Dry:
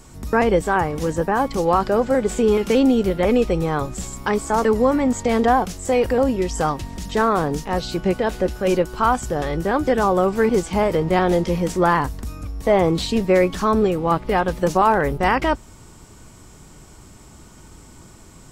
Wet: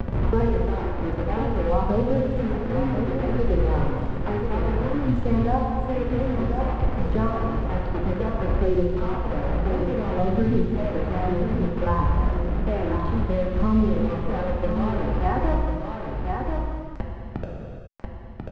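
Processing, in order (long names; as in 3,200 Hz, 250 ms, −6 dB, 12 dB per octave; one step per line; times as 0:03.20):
sub-octave generator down 1 octave, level −5 dB
reverb reduction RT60 1.2 s
spectral tilt −3 dB per octave
in parallel at +1.5 dB: brickwall limiter −10 dBFS, peak gain reduction 10 dB
on the sum: square-wave tremolo 0.59 Hz, depth 65%, duty 30%
flanger 0.25 Hz, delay 1.8 ms, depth 2.6 ms, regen +49%
bit reduction 4 bits
head-to-tape spacing loss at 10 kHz 45 dB
on a send: single-tap delay 1,040 ms −10 dB
on the sum: reverb whose tail is shaped and stops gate 440 ms falling, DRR −2 dB
multiband upward and downward compressor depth 70%
level −8 dB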